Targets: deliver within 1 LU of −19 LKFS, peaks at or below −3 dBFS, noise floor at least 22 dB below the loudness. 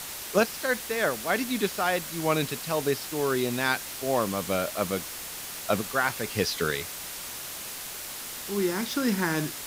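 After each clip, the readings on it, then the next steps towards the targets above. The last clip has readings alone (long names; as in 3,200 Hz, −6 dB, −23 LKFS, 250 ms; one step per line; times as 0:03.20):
background noise floor −38 dBFS; target noise floor −51 dBFS; integrated loudness −28.5 LKFS; sample peak −10.0 dBFS; target loudness −19.0 LKFS
→ broadband denoise 13 dB, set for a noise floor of −38 dBFS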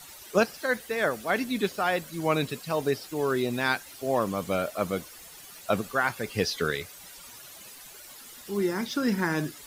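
background noise floor −47 dBFS; target noise floor −51 dBFS
→ broadband denoise 6 dB, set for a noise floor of −47 dBFS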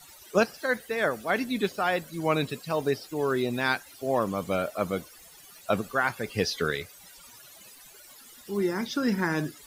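background noise floor −51 dBFS; integrated loudness −28.5 LKFS; sample peak −10.0 dBFS; target loudness −19.0 LKFS
→ level +9.5 dB
brickwall limiter −3 dBFS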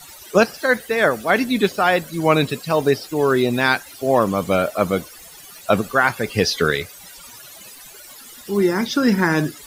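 integrated loudness −19.0 LKFS; sample peak −3.0 dBFS; background noise floor −42 dBFS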